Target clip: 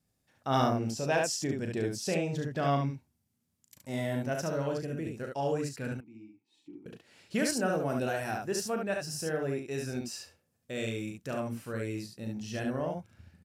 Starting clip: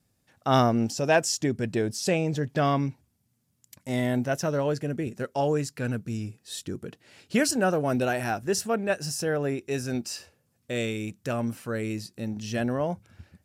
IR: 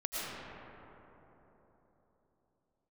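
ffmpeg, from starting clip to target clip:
-filter_complex "[0:a]asettb=1/sr,asplit=3[s0][s1][s2];[s0]atrim=end=5.934[s3];[s1]atrim=start=5.93:end=6.86,asetpts=PTS-STARTPTS,afade=t=in:d=0.004:c=qsin,afade=t=out:st=0.926:d=0.004:c=qsin,asplit=3[s4][s5][s6];[s4]bandpass=f=300:t=q:w=8,volume=1[s7];[s5]bandpass=f=870:t=q:w=8,volume=0.501[s8];[s6]bandpass=f=2240:t=q:w=8,volume=0.355[s9];[s7][s8][s9]amix=inputs=3:normalize=0[s10];[s2]atrim=start=6.856[s11];[s3][s10]acrossfade=d=0.004:c1=hsin:c2=qsin[s12];[s12][s11]acrossfade=d=0.004:c1=qsin:c2=hsin,aecho=1:1:37|71:0.422|0.668,volume=0.422"

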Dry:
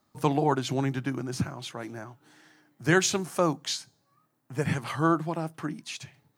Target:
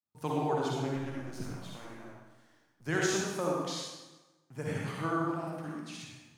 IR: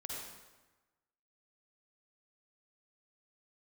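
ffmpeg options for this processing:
-filter_complex "[0:a]asettb=1/sr,asplit=3[s0][s1][s2];[s0]atrim=end=0.964[s3];[s1]atrim=start=0.96:end=2.86,asetpts=PTS-STARTPTS,afade=t=in:d=0.004:c=qsin,afade=t=out:st=1.896:d=0.004:c=qsin,aeval=exprs='if(lt(val(0),0),0.251*val(0),val(0))':c=same[s4];[s2]atrim=start=2.856[s5];[s3][s4]acrossfade=d=0.004:c1=hsin:c2=qsin[s6];[s6][s5]acrossfade=d=0.004:c1=qsin:c2=hsin,agate=range=0.0224:threshold=0.00112:ratio=3:detection=peak[s7];[1:a]atrim=start_sample=2205[s8];[s7][s8]afir=irnorm=-1:irlink=0,volume=0.531"

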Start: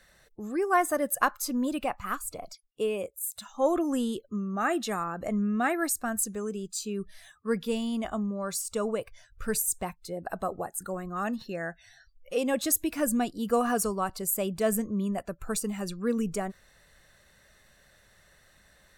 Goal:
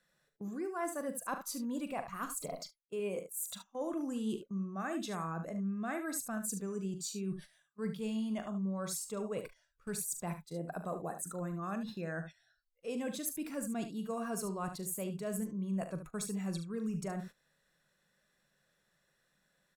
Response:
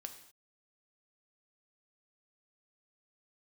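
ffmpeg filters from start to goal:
-af "asetrate=42336,aresample=44100,lowshelf=f=120:t=q:w=3:g=-8.5,areverse,acompressor=threshold=0.0141:ratio=5,areverse,aecho=1:1:41|73:0.266|0.316,agate=range=0.158:threshold=0.00447:ratio=16:detection=peak"

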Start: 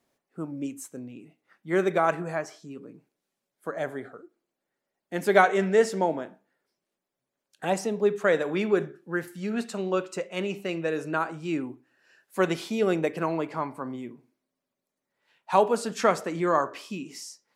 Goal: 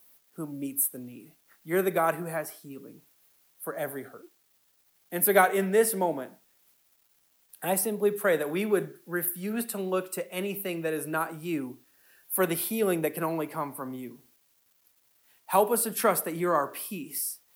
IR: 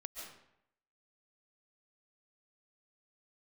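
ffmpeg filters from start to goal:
-filter_complex "[0:a]acrossover=split=160|490|2400[s0][s1][s2][s3];[s3]aexciter=amount=11.8:drive=9.8:freq=10000[s4];[s0][s1][s2][s4]amix=inputs=4:normalize=0,acrusher=bits=9:mix=0:aa=0.000001,volume=0.794"

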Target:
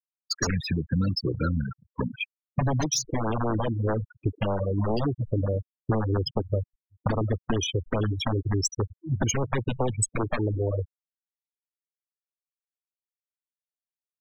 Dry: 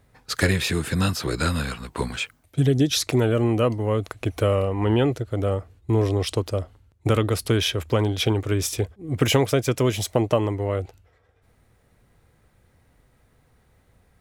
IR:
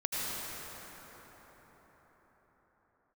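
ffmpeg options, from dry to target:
-filter_complex "[0:a]aeval=exprs='(mod(4.47*val(0)+1,2)-1)/4.47':c=same,equalizer=f=61:t=o:w=0.54:g=-10,asplit=2[s0][s1];[s1]aecho=0:1:367|734|1101|1468|1835:0.158|0.0872|0.0479|0.0264|0.0145[s2];[s0][s2]amix=inputs=2:normalize=0,afftfilt=real='re*gte(hypot(re,im),0.141)':imag='im*gte(hypot(re,im),0.141)':win_size=1024:overlap=0.75,aexciter=amount=10:drive=9.1:freq=5800,agate=range=0.0224:threshold=0.0282:ratio=3:detection=peak,acompressor=threshold=0.0631:ratio=8,lowshelf=f=380:g=4.5,afftfilt=real='re*(1-between(b*sr/1024,330*pow(2900/330,0.5+0.5*sin(2*PI*4.9*pts/sr))/1.41,330*pow(2900/330,0.5+0.5*sin(2*PI*4.9*pts/sr))*1.41))':imag='im*(1-between(b*sr/1024,330*pow(2900/330,0.5+0.5*sin(2*PI*4.9*pts/sr))/1.41,330*pow(2900/330,0.5+0.5*sin(2*PI*4.9*pts/sr))*1.41))':win_size=1024:overlap=0.75"

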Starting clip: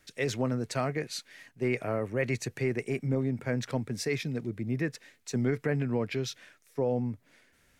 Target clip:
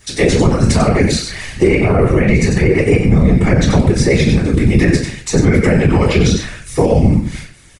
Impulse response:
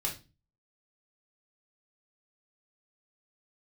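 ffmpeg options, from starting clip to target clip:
-filter_complex "[0:a]asettb=1/sr,asplit=3[s0][s1][s2];[s0]atrim=end=1.764[s3];[s1]atrim=start=1.76:end=4.11,asetpts=PTS-STARTPTS,afade=t=in:d=0.004:c=qsin,afade=t=out:st=2.346:d=0.004:c=qsin,highshelf=f=3500:g=-10.5[s4];[s2]atrim=start=4.106[s5];[s3][s4]acrossfade=d=0.004:c1=hsin:c2=qsin[s6];[s6][s5]acrossfade=d=0.004:c1=qsin:c2=hsin,aresample=22050,aresample=44100,aemphasis=mode=production:type=50kf,aecho=1:1:90:0.398,agate=range=0.355:threshold=0.00141:ratio=16:detection=peak,acrossover=split=630|1800[s7][s8][s9];[s7]acompressor=threshold=0.0158:ratio=4[s10];[s8]acompressor=threshold=0.00398:ratio=4[s11];[s9]acompressor=threshold=0.00355:ratio=4[s12];[s10][s11][s12]amix=inputs=3:normalize=0[s13];[1:a]atrim=start_sample=2205[s14];[s13][s14]afir=irnorm=-1:irlink=0,afftfilt=real='hypot(re,im)*cos(2*PI*random(0))':imag='hypot(re,im)*sin(2*PI*random(1))':win_size=512:overlap=0.75,alimiter=level_in=29.9:limit=0.891:release=50:level=0:latency=1,volume=0.891"

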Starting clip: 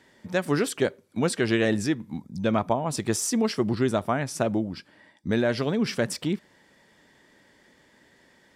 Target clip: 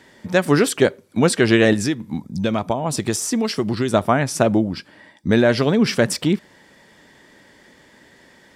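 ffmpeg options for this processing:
-filter_complex "[0:a]asettb=1/sr,asplit=3[s0][s1][s2];[s0]atrim=end=1.734[s3];[s1]atrim=start=1.73:end=3.94,asetpts=PTS-STARTPTS,afade=t=in:d=0.004:c=qsin,afade=t=out:st=2.206:d=0.004:c=qsin,acrossover=split=1200|2500[s4][s5][s6];[s4]acompressor=threshold=0.0447:ratio=4[s7];[s5]acompressor=threshold=0.00501:ratio=4[s8];[s6]acompressor=threshold=0.0251:ratio=4[s9];[s7][s8][s9]amix=inputs=3:normalize=0[s10];[s2]atrim=start=3.936[s11];[s3][s10]acrossfade=d=0.004:c1=hsin:c2=qsin[s12];[s12][s11]acrossfade=d=0.004:c1=qsin:c2=hsin,volume=2.66"

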